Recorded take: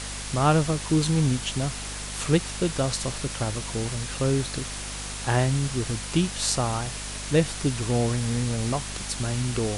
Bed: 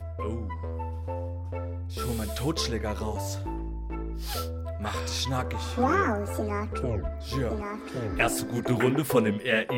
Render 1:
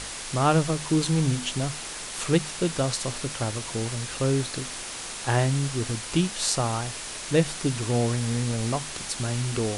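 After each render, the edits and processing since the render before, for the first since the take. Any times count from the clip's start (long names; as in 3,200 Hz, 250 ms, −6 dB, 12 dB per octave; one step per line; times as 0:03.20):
mains-hum notches 50/100/150/200/250 Hz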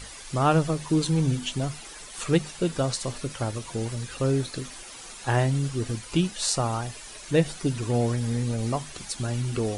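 broadband denoise 11 dB, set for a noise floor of −36 dBFS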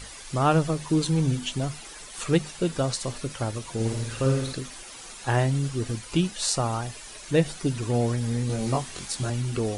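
0:03.74–0:04.53: flutter between parallel walls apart 9.1 metres, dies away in 0.69 s
0:08.47–0:09.30: double-tracking delay 23 ms −2 dB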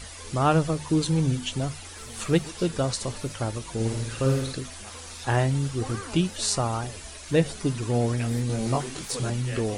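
mix in bed −14.5 dB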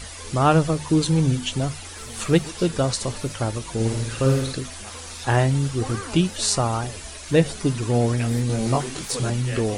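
level +4 dB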